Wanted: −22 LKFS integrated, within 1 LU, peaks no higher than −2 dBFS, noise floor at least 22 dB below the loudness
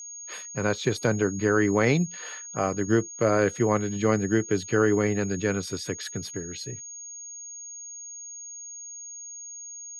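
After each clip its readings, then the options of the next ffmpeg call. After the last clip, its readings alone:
interfering tone 6,600 Hz; level of the tone −38 dBFS; integrated loudness −26.0 LKFS; sample peak −9.0 dBFS; target loudness −22.0 LKFS
→ -af "bandreject=frequency=6600:width=30"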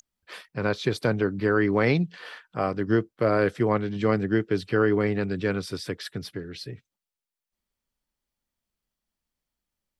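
interfering tone none found; integrated loudness −25.5 LKFS; sample peak −9.0 dBFS; target loudness −22.0 LKFS
→ -af "volume=3.5dB"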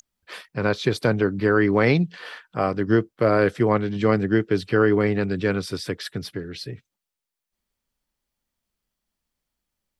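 integrated loudness −22.0 LKFS; sample peak −5.5 dBFS; background noise floor −86 dBFS

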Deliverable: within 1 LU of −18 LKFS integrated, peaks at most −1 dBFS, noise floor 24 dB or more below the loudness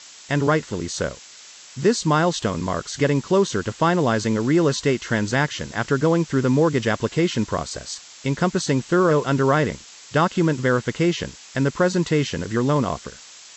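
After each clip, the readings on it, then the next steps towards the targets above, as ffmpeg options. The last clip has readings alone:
background noise floor −44 dBFS; target noise floor −46 dBFS; integrated loudness −21.5 LKFS; sample peak −6.5 dBFS; target loudness −18.0 LKFS
→ -af "afftdn=noise_reduction=6:noise_floor=-44"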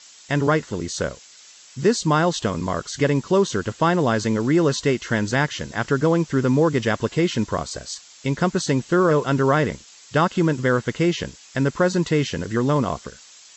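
background noise floor −48 dBFS; integrated loudness −21.5 LKFS; sample peak −6.5 dBFS; target loudness −18.0 LKFS
→ -af "volume=3.5dB"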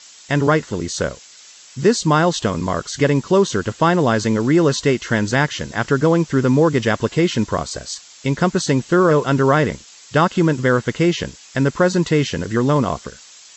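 integrated loudness −18.0 LKFS; sample peak −3.0 dBFS; background noise floor −44 dBFS

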